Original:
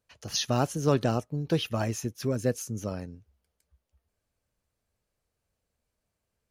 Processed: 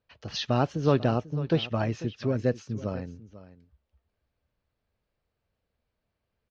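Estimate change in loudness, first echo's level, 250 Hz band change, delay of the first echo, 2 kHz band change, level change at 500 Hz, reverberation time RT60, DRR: +1.0 dB, -16.0 dB, +1.5 dB, 494 ms, +1.0 dB, +1.5 dB, no reverb, no reverb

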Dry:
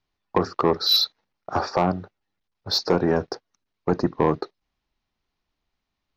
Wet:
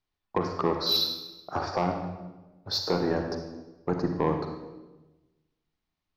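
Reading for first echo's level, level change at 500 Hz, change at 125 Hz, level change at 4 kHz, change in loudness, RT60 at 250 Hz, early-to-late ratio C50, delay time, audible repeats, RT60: no echo, -5.5 dB, -4.0 dB, -5.5 dB, -6.0 dB, 1.3 s, 5.5 dB, no echo, no echo, 1.1 s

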